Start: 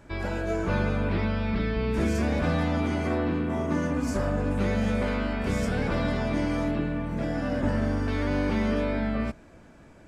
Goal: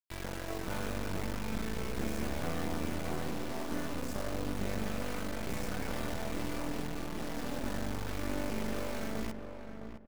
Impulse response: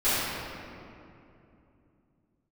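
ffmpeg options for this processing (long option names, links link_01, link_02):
-filter_complex "[0:a]acrusher=bits=3:dc=4:mix=0:aa=0.000001,asplit=2[link_01][link_02];[link_02]adelay=661,lowpass=frequency=1500:poles=1,volume=-7dB,asplit=2[link_03][link_04];[link_04]adelay=661,lowpass=frequency=1500:poles=1,volume=0.24,asplit=2[link_05][link_06];[link_06]adelay=661,lowpass=frequency=1500:poles=1,volume=0.24[link_07];[link_01][link_03][link_05][link_07]amix=inputs=4:normalize=0,volume=-7dB"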